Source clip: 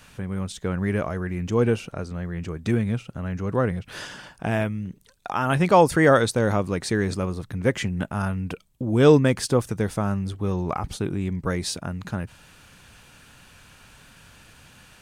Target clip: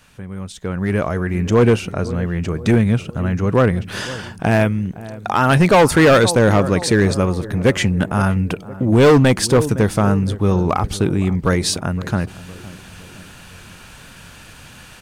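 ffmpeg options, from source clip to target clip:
ffmpeg -i in.wav -filter_complex "[0:a]asplit=2[link_01][link_02];[link_02]adelay=513,lowpass=frequency=1200:poles=1,volume=-17dB,asplit=2[link_03][link_04];[link_04]adelay=513,lowpass=frequency=1200:poles=1,volume=0.54,asplit=2[link_05][link_06];[link_06]adelay=513,lowpass=frequency=1200:poles=1,volume=0.54,asplit=2[link_07][link_08];[link_08]adelay=513,lowpass=frequency=1200:poles=1,volume=0.54,asplit=2[link_09][link_10];[link_10]adelay=513,lowpass=frequency=1200:poles=1,volume=0.54[link_11];[link_03][link_05][link_07][link_09][link_11]amix=inputs=5:normalize=0[link_12];[link_01][link_12]amix=inputs=2:normalize=0,volume=16.5dB,asoftclip=hard,volume=-16.5dB,dynaudnorm=framelen=370:gausssize=5:maxgain=11dB,volume=-1.5dB" out.wav

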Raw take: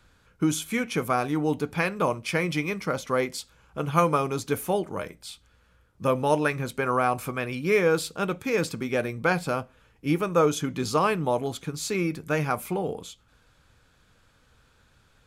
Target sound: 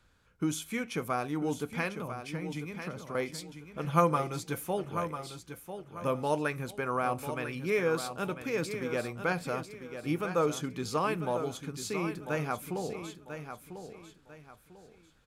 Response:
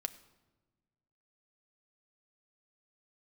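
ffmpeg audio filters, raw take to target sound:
-filter_complex "[0:a]asettb=1/sr,asplit=3[link_01][link_02][link_03];[link_01]atrim=end=1.994[link_04];[link_02]atrim=start=1.99:end=3.15,asetpts=PTS-STARTPTS,afade=type=in:duration=0.004:curve=qsin,afade=type=out:start_time=1.156:duration=0.004:curve=qsin,acrossover=split=220[link_05][link_06];[link_06]acompressor=threshold=-35dB:ratio=4[link_07];[link_05][link_07]amix=inputs=2:normalize=0[link_08];[link_03]atrim=start=3.146[link_09];[link_04][link_08]acrossfade=duration=0.004:curve1=hsin:curve2=qsin[link_10];[link_10][link_09]acrossfade=duration=0.004:curve1=qsin:curve2=hsin,asettb=1/sr,asplit=3[link_11][link_12][link_13];[link_11]atrim=end=3.844[link_14];[link_12]atrim=start=3.84:end=4.64,asetpts=PTS-STARTPTS,afade=type=in:duration=0.004:curve=qsin,afade=type=out:start_time=0.796:duration=0.004:curve=qsin,aecho=1:1:5.9:0.65,atrim=end_sample=35280[link_15];[link_13]atrim=start=4.636[link_16];[link_14][link_15]acrossfade=duration=0.004:curve1=hsin:curve2=qsin[link_17];[link_17][link_16]acrossfade=duration=0.004:curve1=qsin:curve2=hsin,aecho=1:1:996|1992|2988:0.335|0.104|0.0322,volume=-7dB"

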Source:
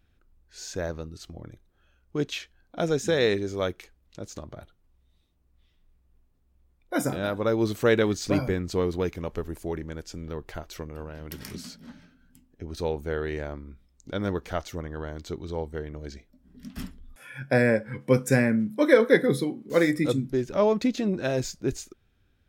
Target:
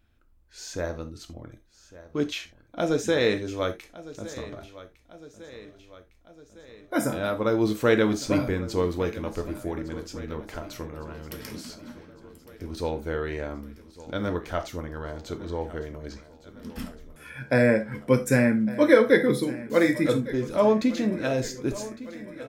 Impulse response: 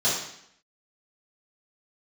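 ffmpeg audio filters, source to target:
-filter_complex "[0:a]aecho=1:1:1157|2314|3471|4628|5785:0.141|0.0819|0.0475|0.0276|0.016,asplit=2[link_01][link_02];[1:a]atrim=start_sample=2205,afade=type=out:start_time=0.2:duration=0.01,atrim=end_sample=9261,asetrate=74970,aresample=44100[link_03];[link_02][link_03]afir=irnorm=-1:irlink=0,volume=-15dB[link_04];[link_01][link_04]amix=inputs=2:normalize=0"

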